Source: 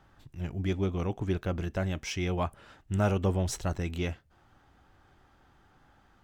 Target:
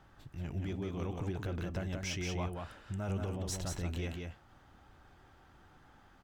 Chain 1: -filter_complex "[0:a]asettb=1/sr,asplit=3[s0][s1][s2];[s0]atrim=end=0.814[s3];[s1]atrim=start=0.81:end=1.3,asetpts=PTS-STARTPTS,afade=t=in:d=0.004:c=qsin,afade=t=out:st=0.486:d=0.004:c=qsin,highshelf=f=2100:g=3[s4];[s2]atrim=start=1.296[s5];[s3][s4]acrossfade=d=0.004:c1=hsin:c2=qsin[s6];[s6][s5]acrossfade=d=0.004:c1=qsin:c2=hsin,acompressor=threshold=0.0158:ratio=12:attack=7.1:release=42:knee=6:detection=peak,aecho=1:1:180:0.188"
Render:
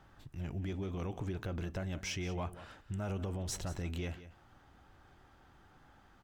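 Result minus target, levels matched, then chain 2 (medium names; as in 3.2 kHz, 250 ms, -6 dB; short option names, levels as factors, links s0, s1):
echo-to-direct -10.5 dB
-filter_complex "[0:a]asettb=1/sr,asplit=3[s0][s1][s2];[s0]atrim=end=0.814[s3];[s1]atrim=start=0.81:end=1.3,asetpts=PTS-STARTPTS,afade=t=in:d=0.004:c=qsin,afade=t=out:st=0.486:d=0.004:c=qsin,highshelf=f=2100:g=3[s4];[s2]atrim=start=1.296[s5];[s3][s4]acrossfade=d=0.004:c1=hsin:c2=qsin[s6];[s6][s5]acrossfade=d=0.004:c1=qsin:c2=hsin,acompressor=threshold=0.0158:ratio=12:attack=7.1:release=42:knee=6:detection=peak,aecho=1:1:180:0.631"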